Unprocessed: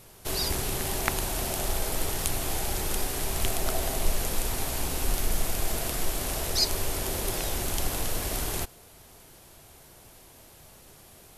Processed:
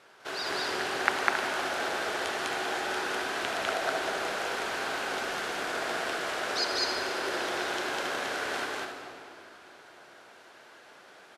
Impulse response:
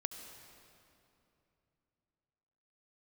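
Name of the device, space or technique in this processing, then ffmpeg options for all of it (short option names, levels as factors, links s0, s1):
station announcement: -filter_complex "[0:a]highpass=390,lowpass=4000,equalizer=f=1500:t=o:w=0.51:g=10,aecho=1:1:201.2|271.1:1|0.355[s0];[1:a]atrim=start_sample=2205[s1];[s0][s1]afir=irnorm=-1:irlink=0"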